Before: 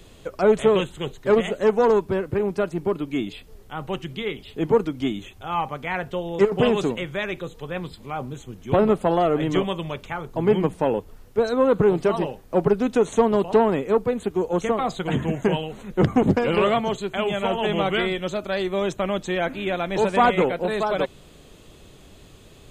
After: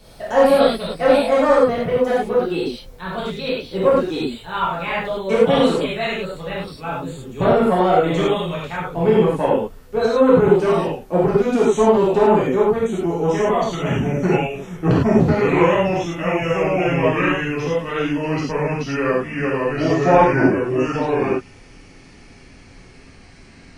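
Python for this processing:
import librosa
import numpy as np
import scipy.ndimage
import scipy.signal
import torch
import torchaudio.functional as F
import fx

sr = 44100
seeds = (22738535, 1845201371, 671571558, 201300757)

y = fx.speed_glide(x, sr, from_pct=128, to_pct=63)
y = fx.rev_gated(y, sr, seeds[0], gate_ms=130, shape='flat', drr_db=-8.0)
y = y * 10.0 ** (-3.5 / 20.0)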